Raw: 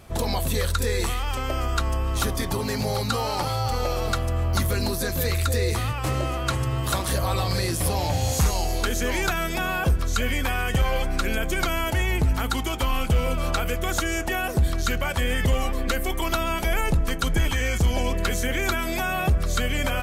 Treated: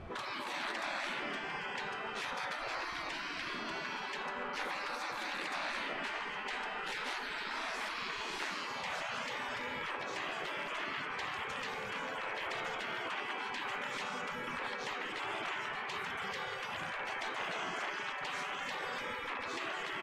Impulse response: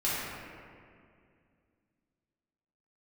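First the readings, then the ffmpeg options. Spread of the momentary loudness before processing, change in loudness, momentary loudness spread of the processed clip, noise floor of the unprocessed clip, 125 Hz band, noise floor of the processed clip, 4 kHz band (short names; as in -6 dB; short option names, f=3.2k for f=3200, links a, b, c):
3 LU, -13.0 dB, 2 LU, -28 dBFS, -33.0 dB, -41 dBFS, -10.5 dB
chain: -filter_complex "[0:a]asplit=2[a][b];[1:a]atrim=start_sample=2205[c];[b][c]afir=irnorm=-1:irlink=0,volume=-13.5dB[d];[a][d]amix=inputs=2:normalize=0,aeval=exprs='0.211*(abs(mod(val(0)/0.211+3,4)-2)-1)':c=same,afftfilt=real='re*lt(hypot(re,im),0.0708)':imag='im*lt(hypot(re,im),0.0708)':win_size=1024:overlap=0.75,lowpass=2.3k,asplit=6[e][f][g][h][i][j];[f]adelay=84,afreqshift=-73,volume=-22dB[k];[g]adelay=168,afreqshift=-146,volume=-26.2dB[l];[h]adelay=252,afreqshift=-219,volume=-30.3dB[m];[i]adelay=336,afreqshift=-292,volume=-34.5dB[n];[j]adelay=420,afreqshift=-365,volume=-38.6dB[o];[e][k][l][m][n][o]amix=inputs=6:normalize=0"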